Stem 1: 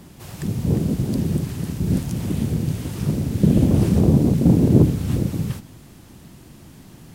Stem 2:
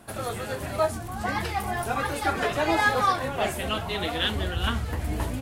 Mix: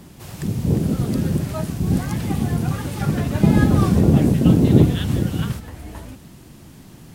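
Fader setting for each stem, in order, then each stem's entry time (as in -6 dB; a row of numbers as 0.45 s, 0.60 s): +1.0 dB, -7.0 dB; 0.00 s, 0.75 s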